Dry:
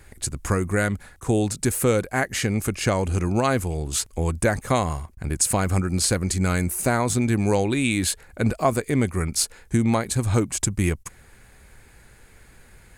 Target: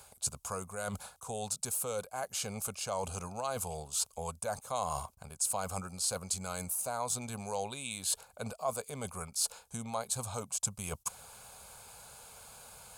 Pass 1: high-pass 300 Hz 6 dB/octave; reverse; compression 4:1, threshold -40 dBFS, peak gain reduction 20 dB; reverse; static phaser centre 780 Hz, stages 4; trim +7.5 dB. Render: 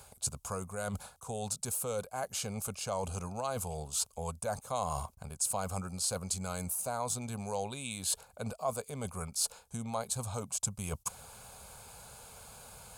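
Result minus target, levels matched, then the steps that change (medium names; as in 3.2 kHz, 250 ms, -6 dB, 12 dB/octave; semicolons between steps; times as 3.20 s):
250 Hz band +3.0 dB
change: high-pass 610 Hz 6 dB/octave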